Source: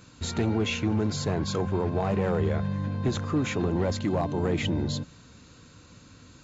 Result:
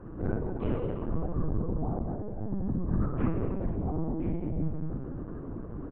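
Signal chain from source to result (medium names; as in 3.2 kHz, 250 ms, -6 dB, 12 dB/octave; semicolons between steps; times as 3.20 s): high-pass 270 Hz 6 dB/octave; spectral gate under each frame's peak -30 dB strong; Bessel low-pass 580 Hz, order 4; dynamic bell 380 Hz, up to -4 dB, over -41 dBFS, Q 0.8; compressor with a negative ratio -44 dBFS, ratio -1; delay 219 ms -10 dB; simulated room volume 2200 m³, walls mixed, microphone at 3.3 m; speed mistake 44.1 kHz file played as 48 kHz; LPC vocoder at 8 kHz pitch kept; trim +4 dB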